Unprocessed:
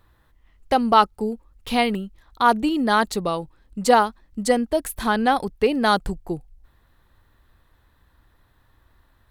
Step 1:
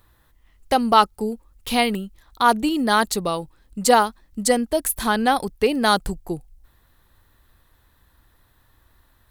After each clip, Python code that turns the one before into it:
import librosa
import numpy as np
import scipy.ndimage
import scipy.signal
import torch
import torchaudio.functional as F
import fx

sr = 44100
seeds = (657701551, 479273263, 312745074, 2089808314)

y = fx.high_shelf(x, sr, hz=5300.0, db=10.5)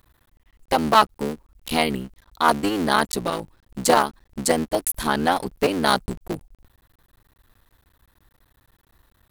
y = fx.cycle_switch(x, sr, every=3, mode='muted')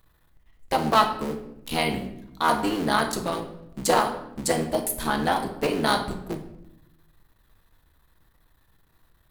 y = fx.room_shoebox(x, sr, seeds[0], volume_m3=210.0, walls='mixed', distance_m=0.64)
y = F.gain(torch.from_numpy(y), -4.5).numpy()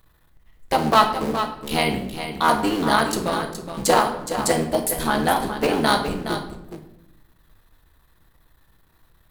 y = x + 10.0 ** (-9.5 / 20.0) * np.pad(x, (int(418 * sr / 1000.0), 0))[:len(x)]
y = F.gain(torch.from_numpy(y), 3.5).numpy()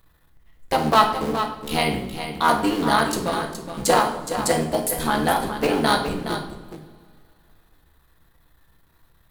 y = fx.rev_double_slope(x, sr, seeds[1], early_s=0.44, late_s=3.0, knee_db=-18, drr_db=9.5)
y = F.gain(torch.from_numpy(y), -1.0).numpy()